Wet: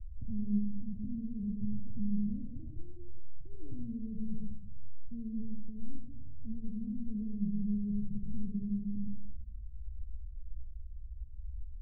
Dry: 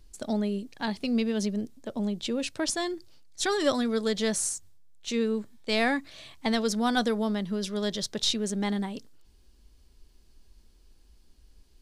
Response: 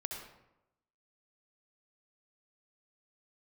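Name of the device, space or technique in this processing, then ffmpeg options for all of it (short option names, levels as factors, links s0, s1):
club heard from the street: -filter_complex "[0:a]alimiter=limit=0.0841:level=0:latency=1,lowpass=f=120:w=0.5412,lowpass=f=120:w=1.3066[s0];[1:a]atrim=start_sample=2205[s1];[s0][s1]afir=irnorm=-1:irlink=0,volume=5.01"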